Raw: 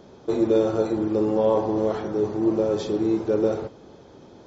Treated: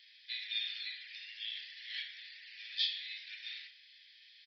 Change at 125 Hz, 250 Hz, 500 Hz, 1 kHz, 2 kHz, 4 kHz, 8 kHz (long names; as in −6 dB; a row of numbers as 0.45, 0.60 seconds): below −40 dB, below −40 dB, below −40 dB, below −40 dB, +1.5 dB, +9.0 dB, can't be measured